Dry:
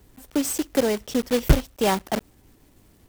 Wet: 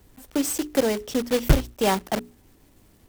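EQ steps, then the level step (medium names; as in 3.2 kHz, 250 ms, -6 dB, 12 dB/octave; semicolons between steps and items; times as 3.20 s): hum notches 60/120/180/240/300/360/420 Hz; 0.0 dB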